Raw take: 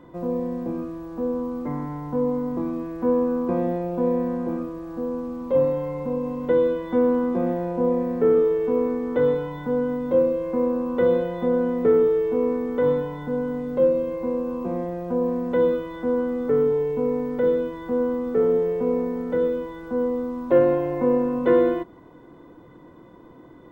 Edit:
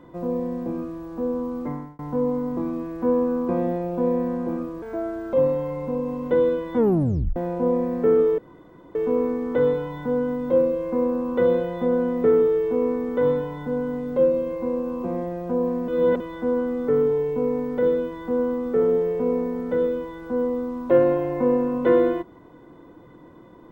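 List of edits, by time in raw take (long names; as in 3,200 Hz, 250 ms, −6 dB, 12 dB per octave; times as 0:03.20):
0:01.67–0:01.99: fade out
0:04.82–0:05.51: play speed 135%
0:06.95: tape stop 0.59 s
0:08.56: splice in room tone 0.57 s
0:15.49–0:15.81: reverse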